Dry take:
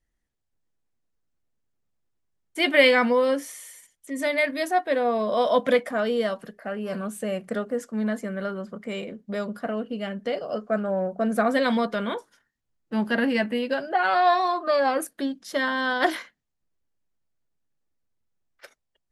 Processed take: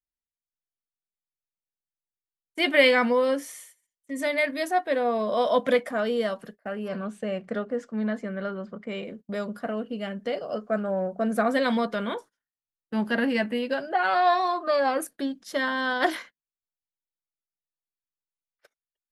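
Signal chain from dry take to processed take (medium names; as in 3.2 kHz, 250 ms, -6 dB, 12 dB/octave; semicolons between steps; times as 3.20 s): 6.88–9.05 s: low-pass 4.5 kHz 12 dB/octave; gate -42 dBFS, range -22 dB; trim -1.5 dB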